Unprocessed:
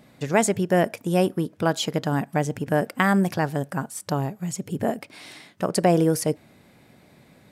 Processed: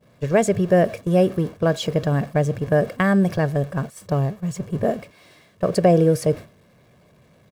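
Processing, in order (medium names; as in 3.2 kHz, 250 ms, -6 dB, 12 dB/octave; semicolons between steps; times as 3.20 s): jump at every zero crossing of -32.5 dBFS; high-pass 140 Hz 6 dB/octave; expander -26 dBFS; tilt EQ -2.5 dB/octave; comb 1.8 ms, depth 51%; dynamic bell 1 kHz, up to -6 dB, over -41 dBFS, Q 4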